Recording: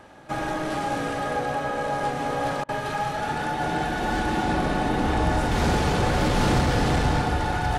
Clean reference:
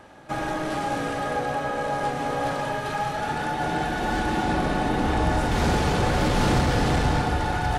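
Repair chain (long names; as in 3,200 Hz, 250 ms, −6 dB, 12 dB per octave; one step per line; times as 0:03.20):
repair the gap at 0:02.64, 46 ms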